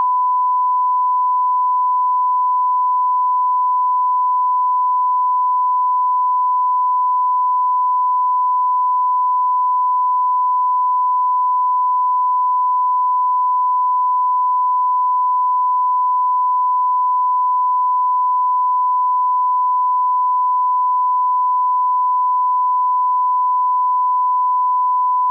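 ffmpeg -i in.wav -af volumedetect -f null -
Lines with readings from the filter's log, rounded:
mean_volume: -15.7 dB
max_volume: -8.9 dB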